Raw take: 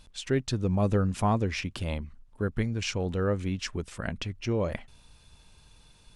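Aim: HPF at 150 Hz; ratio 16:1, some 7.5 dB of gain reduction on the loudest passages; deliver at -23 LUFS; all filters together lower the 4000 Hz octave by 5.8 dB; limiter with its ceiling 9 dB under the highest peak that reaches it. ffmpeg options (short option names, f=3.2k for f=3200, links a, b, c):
-af "highpass=150,equalizer=f=4k:t=o:g=-8.5,acompressor=threshold=-28dB:ratio=16,volume=16dB,alimiter=limit=-10.5dB:level=0:latency=1"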